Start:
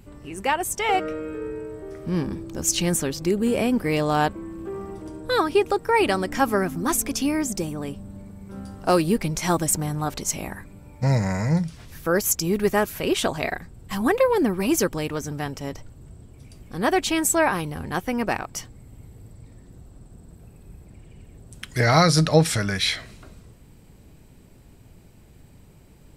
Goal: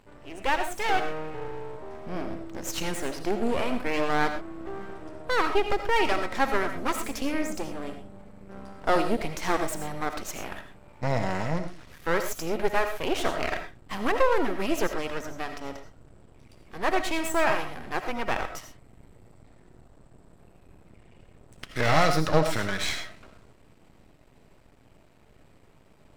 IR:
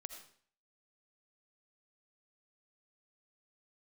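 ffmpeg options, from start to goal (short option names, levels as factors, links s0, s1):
-filter_complex "[0:a]asplit=2[s0][s1];[s1]highpass=f=720:p=1,volume=3.98,asoftclip=type=tanh:threshold=0.631[s2];[s0][s2]amix=inputs=2:normalize=0,lowpass=f=1500:p=1,volume=0.501,aeval=exprs='max(val(0),0)':c=same[s3];[1:a]atrim=start_sample=2205,atrim=end_sample=6174[s4];[s3][s4]afir=irnorm=-1:irlink=0,volume=1.5"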